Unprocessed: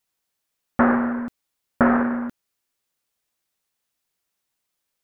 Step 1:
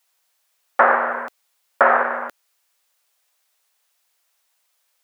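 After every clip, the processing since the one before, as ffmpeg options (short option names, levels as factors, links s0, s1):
-filter_complex "[0:a]asplit=2[s0][s1];[s1]alimiter=limit=0.168:level=0:latency=1:release=382,volume=0.75[s2];[s0][s2]amix=inputs=2:normalize=0,highpass=f=530:w=0.5412,highpass=f=530:w=1.3066,volume=1.88"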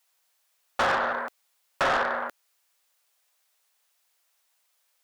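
-af "asoftclip=type=tanh:threshold=0.133,volume=0.75"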